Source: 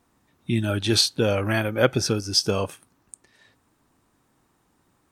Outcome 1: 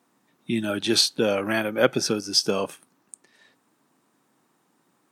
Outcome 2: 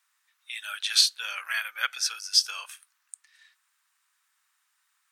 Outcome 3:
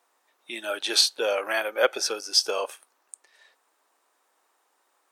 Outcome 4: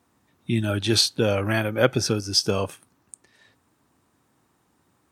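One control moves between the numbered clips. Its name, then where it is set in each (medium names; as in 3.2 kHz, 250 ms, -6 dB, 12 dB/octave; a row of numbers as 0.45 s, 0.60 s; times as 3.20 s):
high-pass, cutoff frequency: 160 Hz, 1.4 kHz, 480 Hz, 61 Hz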